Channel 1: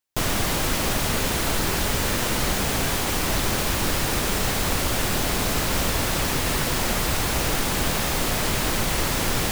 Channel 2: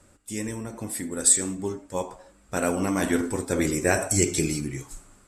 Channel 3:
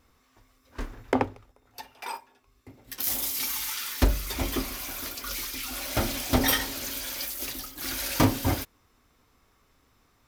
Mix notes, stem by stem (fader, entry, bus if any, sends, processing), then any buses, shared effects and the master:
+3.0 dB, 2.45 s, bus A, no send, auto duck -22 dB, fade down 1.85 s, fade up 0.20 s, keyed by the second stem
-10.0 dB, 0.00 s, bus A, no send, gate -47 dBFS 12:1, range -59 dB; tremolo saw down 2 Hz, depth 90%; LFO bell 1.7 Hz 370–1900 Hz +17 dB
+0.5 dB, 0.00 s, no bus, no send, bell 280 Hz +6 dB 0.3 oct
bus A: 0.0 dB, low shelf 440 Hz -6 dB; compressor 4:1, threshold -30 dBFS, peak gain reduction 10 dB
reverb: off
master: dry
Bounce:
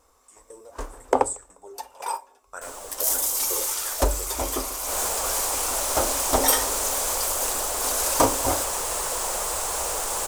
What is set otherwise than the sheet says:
stem 2 -10.0 dB -> -17.5 dB; master: extra graphic EQ 125/250/500/1000/2000/4000/8000 Hz -12/-10/+8/+7/-6/-4/+12 dB

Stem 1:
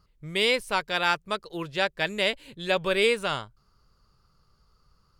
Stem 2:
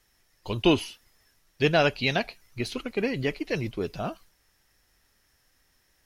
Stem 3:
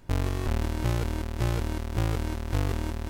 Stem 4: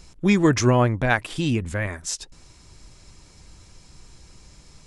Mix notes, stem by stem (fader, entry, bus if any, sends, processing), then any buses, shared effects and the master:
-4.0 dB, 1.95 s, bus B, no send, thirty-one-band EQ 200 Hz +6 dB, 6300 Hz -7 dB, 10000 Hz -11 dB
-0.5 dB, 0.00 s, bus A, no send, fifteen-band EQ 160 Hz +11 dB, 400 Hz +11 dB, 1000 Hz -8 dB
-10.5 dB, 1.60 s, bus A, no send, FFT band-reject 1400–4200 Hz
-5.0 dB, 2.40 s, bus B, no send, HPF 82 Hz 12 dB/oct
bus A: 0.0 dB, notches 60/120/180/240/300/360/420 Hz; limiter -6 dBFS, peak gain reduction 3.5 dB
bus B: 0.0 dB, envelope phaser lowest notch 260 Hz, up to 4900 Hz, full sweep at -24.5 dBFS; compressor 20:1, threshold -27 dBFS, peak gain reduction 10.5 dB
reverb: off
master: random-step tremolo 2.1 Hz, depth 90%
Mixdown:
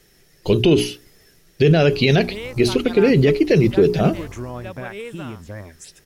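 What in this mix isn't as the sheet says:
stem 2 -0.5 dB -> +11.0 dB; stem 4: entry 2.40 s -> 3.75 s; master: missing random-step tremolo 2.1 Hz, depth 90%

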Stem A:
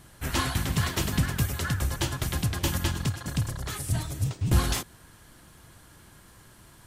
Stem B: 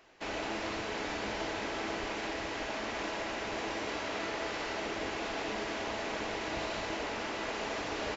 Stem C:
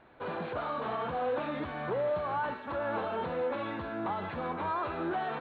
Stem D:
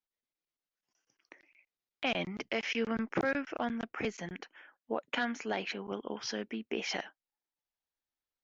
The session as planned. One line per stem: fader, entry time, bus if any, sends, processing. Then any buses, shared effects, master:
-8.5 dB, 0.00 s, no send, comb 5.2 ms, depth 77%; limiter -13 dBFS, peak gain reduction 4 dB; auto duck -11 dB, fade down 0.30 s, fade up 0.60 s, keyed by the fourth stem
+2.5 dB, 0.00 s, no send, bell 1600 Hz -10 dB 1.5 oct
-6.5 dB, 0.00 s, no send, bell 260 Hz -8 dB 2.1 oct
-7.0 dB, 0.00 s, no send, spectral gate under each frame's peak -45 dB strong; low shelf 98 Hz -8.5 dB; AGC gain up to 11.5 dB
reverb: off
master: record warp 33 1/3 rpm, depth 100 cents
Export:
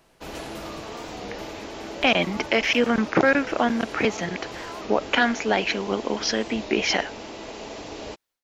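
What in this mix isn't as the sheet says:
stem A -8.5 dB -> -15.5 dB; stem D -7.0 dB -> +1.5 dB

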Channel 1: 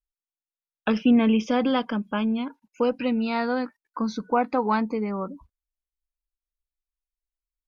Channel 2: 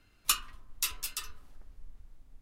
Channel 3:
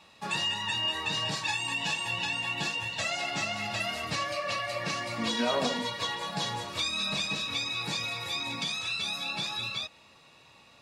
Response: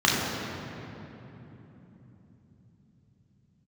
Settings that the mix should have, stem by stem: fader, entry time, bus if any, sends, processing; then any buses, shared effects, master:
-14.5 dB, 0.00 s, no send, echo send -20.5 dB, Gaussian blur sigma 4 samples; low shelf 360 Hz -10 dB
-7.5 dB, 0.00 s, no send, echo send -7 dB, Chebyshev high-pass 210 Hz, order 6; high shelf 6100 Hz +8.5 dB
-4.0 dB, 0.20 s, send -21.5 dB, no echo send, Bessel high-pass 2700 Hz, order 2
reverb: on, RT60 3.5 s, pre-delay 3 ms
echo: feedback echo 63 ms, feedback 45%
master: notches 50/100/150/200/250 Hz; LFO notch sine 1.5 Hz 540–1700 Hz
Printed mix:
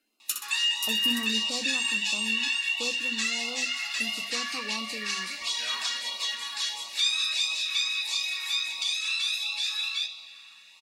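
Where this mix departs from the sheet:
stem 1: missing low shelf 360 Hz -10 dB; stem 3 -4.0 dB -> +5.5 dB

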